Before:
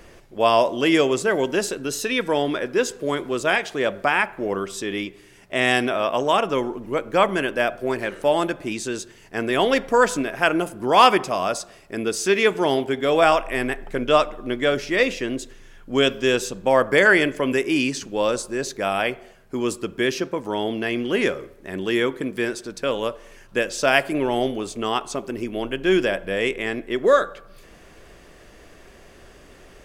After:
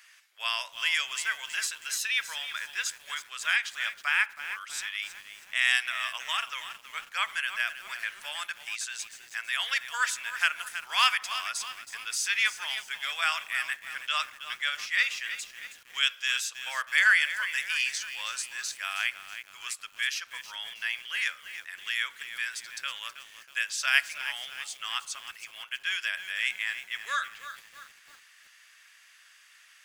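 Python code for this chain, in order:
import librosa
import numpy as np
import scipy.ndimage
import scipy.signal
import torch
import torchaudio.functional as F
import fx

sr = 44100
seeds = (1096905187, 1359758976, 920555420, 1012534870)

y = scipy.signal.sosfilt(scipy.signal.butter(4, 1500.0, 'highpass', fs=sr, output='sos'), x)
y = fx.echo_crushed(y, sr, ms=321, feedback_pct=55, bits=7, wet_db=-11)
y = y * librosa.db_to_amplitude(-2.0)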